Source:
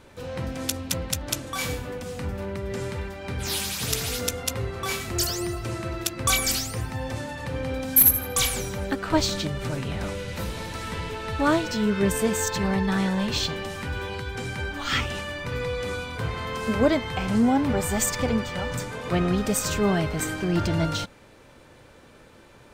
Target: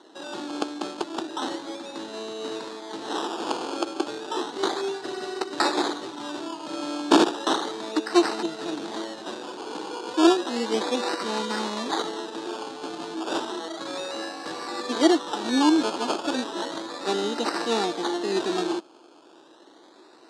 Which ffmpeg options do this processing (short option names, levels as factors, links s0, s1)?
-af "asetrate=49392,aresample=44100,acrusher=samples=18:mix=1:aa=0.000001:lfo=1:lforange=10.8:lforate=0.33,highpass=f=280:w=0.5412,highpass=f=280:w=1.3066,equalizer=f=330:t=q:w=4:g=10,equalizer=f=570:t=q:w=4:g=-5,equalizer=f=860:t=q:w=4:g=5,equalizer=f=2200:t=q:w=4:g=-8,equalizer=f=3900:t=q:w=4:g=9,lowpass=f=8300:w=0.5412,lowpass=f=8300:w=1.3066,volume=0.891"